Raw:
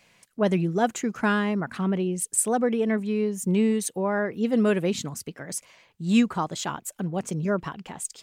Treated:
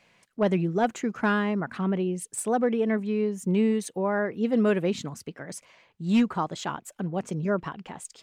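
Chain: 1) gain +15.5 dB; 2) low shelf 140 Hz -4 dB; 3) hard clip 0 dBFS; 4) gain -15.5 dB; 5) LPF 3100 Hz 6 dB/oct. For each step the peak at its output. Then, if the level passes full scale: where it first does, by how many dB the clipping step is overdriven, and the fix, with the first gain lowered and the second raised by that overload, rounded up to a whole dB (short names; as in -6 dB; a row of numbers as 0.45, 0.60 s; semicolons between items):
+6.5, +6.5, 0.0, -15.5, -15.5 dBFS; step 1, 6.5 dB; step 1 +8.5 dB, step 4 -8.5 dB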